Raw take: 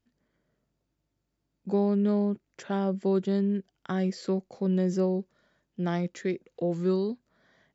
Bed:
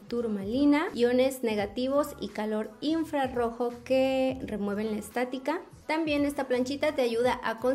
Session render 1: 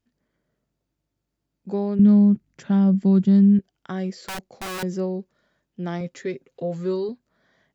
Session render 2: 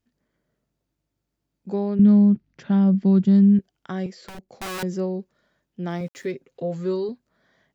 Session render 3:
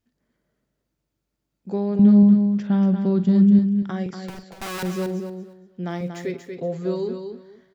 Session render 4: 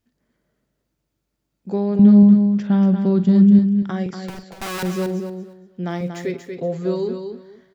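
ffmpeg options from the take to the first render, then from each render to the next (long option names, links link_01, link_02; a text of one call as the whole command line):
ffmpeg -i in.wav -filter_complex "[0:a]asettb=1/sr,asplit=3[link_01][link_02][link_03];[link_01]atrim=end=1.994[link_04];[link_02]atrim=start=1.99:end=3.59,asetpts=PTS-STARTPTS,afade=type=in:duration=0.004:curve=qsin,afade=type=out:start_time=1.596:duration=0.004:curve=qsin,lowshelf=frequency=290:width_type=q:width=1.5:gain=10.5[link_05];[link_03]atrim=start=3.586[link_06];[link_04][link_05]acrossfade=duration=0.004:curve1=hsin:curve2=qsin[link_07];[link_07][link_06]acrossfade=duration=0.004:curve1=qsin:curve2=hsin,asettb=1/sr,asplit=3[link_08][link_09][link_10];[link_08]atrim=end=4.114[link_11];[link_09]atrim=start=4.11:end=4.83,asetpts=PTS-STARTPTS,afade=type=in:duration=0.004:curve=qsin,afade=type=out:start_time=0.716:duration=0.004:curve=qsin,aeval=exprs='(mod(20*val(0)+1,2)-1)/20':channel_layout=same[link_12];[link_10]atrim=start=4.826[link_13];[link_11][link_12]acrossfade=duration=0.004:curve1=hsin:curve2=qsin[link_14];[link_14][link_13]acrossfade=duration=0.004:curve1=qsin:curve2=hsin,asettb=1/sr,asplit=3[link_15][link_16][link_17];[link_15]atrim=end=6.004[link_18];[link_16]atrim=start=6:end=7.09,asetpts=PTS-STARTPTS,afade=type=in:duration=0.004:curve=qsin,afade=type=out:start_time=1.086:duration=0.004:curve=qsin,aecho=1:1:7.4:0.66,atrim=end_sample=48069[link_19];[link_17]atrim=start=7.086[link_20];[link_18][link_19]acrossfade=duration=0.004:curve1=hsin:curve2=qsin[link_21];[link_21][link_20]acrossfade=duration=0.004:curve1=qsin:curve2=hsin" out.wav
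ffmpeg -i in.wav -filter_complex "[0:a]asettb=1/sr,asplit=3[link_01][link_02][link_03];[link_01]atrim=end=1.764[link_04];[link_02]atrim=start=1.76:end=3.24,asetpts=PTS-STARTPTS,afade=type=in:duration=0.004:curve=qsin,afade=type=out:start_time=1.476:duration=0.004:curve=qsin,lowpass=frequency=5400:width=0.5412,lowpass=frequency=5400:width=1.3066[link_05];[link_03]atrim=start=3.236[link_06];[link_04][link_05]acrossfade=duration=0.004:curve1=hsin:curve2=qsin[link_07];[link_07][link_06]acrossfade=duration=0.004:curve1=qsin:curve2=hsin,asettb=1/sr,asplit=3[link_08][link_09][link_10];[link_08]atrim=end=4.064[link_11];[link_09]atrim=start=4.06:end=4.49,asetpts=PTS-STARTPTS,afade=type=in:duration=0.004:curve=qsin,afade=type=out:start_time=0.426:duration=0.004:curve=qsin,acrossover=split=500|4700[link_12][link_13][link_14];[link_12]acompressor=threshold=-36dB:ratio=4[link_15];[link_13]acompressor=threshold=-45dB:ratio=4[link_16];[link_14]acompressor=threshold=-55dB:ratio=4[link_17];[link_15][link_16][link_17]amix=inputs=3:normalize=0[link_18];[link_10]atrim=start=4.486[link_19];[link_11][link_18]acrossfade=duration=0.004:curve1=hsin:curve2=qsin[link_20];[link_20][link_19]acrossfade=duration=0.004:curve1=qsin:curve2=hsin,asplit=3[link_21][link_22][link_23];[link_21]afade=type=out:start_time=5.89:duration=0.02[link_24];[link_22]aeval=exprs='val(0)*gte(abs(val(0)),0.00376)':channel_layout=same,afade=type=in:start_time=5.89:duration=0.02,afade=type=out:start_time=6.3:duration=0.02[link_25];[link_23]afade=type=in:start_time=6.3:duration=0.02[link_26];[link_24][link_25][link_26]amix=inputs=3:normalize=0" out.wav
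ffmpeg -i in.wav -filter_complex "[0:a]asplit=2[link_01][link_02];[link_02]adelay=44,volume=-13dB[link_03];[link_01][link_03]amix=inputs=2:normalize=0,asplit=2[link_04][link_05];[link_05]aecho=0:1:235|470|705:0.447|0.0938|0.0197[link_06];[link_04][link_06]amix=inputs=2:normalize=0" out.wav
ffmpeg -i in.wav -af "volume=3dB" out.wav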